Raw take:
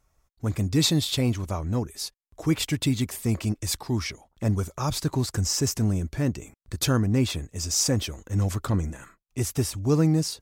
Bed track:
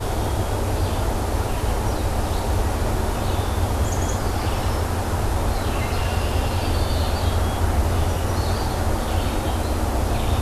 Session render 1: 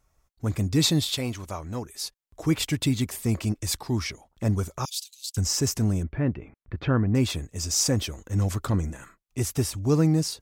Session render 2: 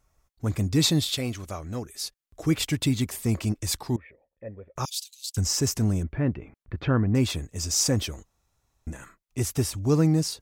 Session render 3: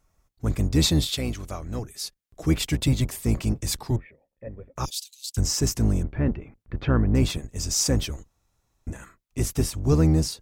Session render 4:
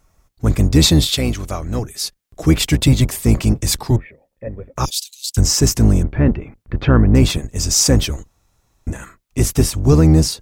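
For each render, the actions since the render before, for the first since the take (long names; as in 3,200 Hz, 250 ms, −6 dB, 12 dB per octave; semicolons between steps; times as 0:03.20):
0:01.10–0:02.04: low-shelf EQ 410 Hz −8.5 dB; 0:04.85–0:05.37: Butterworth high-pass 2,800 Hz 48 dB per octave; 0:06.03–0:07.15: low-pass filter 2,500 Hz 24 dB per octave
0:01.01–0:02.60: parametric band 940 Hz −7.5 dB 0.3 octaves; 0:03.96–0:04.76: formant resonators in series e; 0:08.25–0:08.87: fill with room tone
sub-octave generator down 1 octave, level −1 dB
level +9.5 dB; brickwall limiter −2 dBFS, peak gain reduction 3 dB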